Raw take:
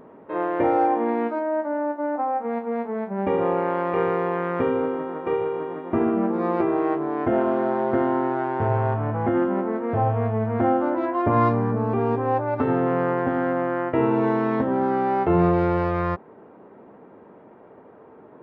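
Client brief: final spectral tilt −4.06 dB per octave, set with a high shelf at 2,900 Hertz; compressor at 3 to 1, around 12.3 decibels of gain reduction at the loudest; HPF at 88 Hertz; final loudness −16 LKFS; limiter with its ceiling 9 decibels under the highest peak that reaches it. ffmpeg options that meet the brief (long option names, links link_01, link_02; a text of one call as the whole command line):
ffmpeg -i in.wav -af "highpass=88,highshelf=frequency=2900:gain=6.5,acompressor=threshold=-33dB:ratio=3,volume=19.5dB,alimiter=limit=-7.5dB:level=0:latency=1" out.wav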